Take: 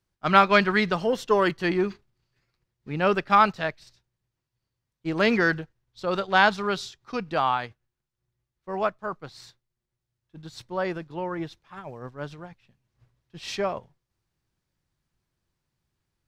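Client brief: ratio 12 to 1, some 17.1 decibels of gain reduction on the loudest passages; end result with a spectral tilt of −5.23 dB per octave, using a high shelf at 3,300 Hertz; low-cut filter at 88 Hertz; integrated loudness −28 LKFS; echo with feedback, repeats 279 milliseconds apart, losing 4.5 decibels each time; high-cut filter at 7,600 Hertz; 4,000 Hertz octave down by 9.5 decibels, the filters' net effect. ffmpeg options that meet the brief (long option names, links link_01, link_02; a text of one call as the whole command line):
ffmpeg -i in.wav -af "highpass=88,lowpass=7600,highshelf=frequency=3300:gain=-7.5,equalizer=frequency=4000:width_type=o:gain=-7.5,acompressor=threshold=-31dB:ratio=12,aecho=1:1:279|558|837|1116|1395|1674|1953|2232|2511:0.596|0.357|0.214|0.129|0.0772|0.0463|0.0278|0.0167|0.01,volume=9dB" out.wav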